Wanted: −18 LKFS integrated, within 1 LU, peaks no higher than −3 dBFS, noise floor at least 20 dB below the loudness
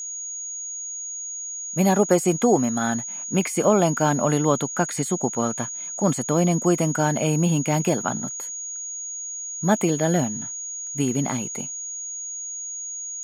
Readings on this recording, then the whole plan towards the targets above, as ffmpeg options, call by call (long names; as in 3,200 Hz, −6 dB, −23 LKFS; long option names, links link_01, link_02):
interfering tone 6,700 Hz; level of the tone −30 dBFS; integrated loudness −23.5 LKFS; sample peak −5.5 dBFS; target loudness −18.0 LKFS
→ -af "bandreject=frequency=6700:width=30"
-af "volume=5.5dB,alimiter=limit=-3dB:level=0:latency=1"